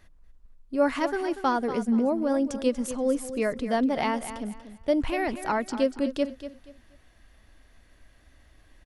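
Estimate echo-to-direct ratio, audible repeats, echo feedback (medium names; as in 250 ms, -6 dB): -11.5 dB, 3, 27%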